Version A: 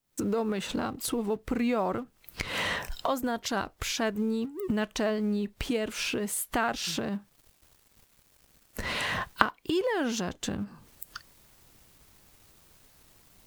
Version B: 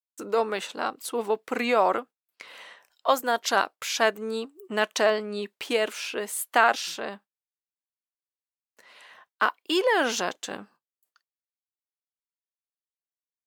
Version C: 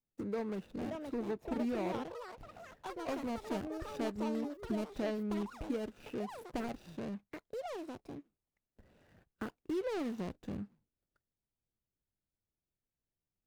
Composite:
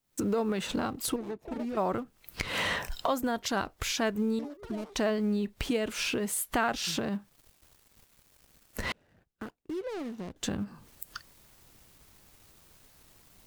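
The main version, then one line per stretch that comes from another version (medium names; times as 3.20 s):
A
1.16–1.77 s: from C
4.39–4.95 s: from C
8.92–10.36 s: from C
not used: B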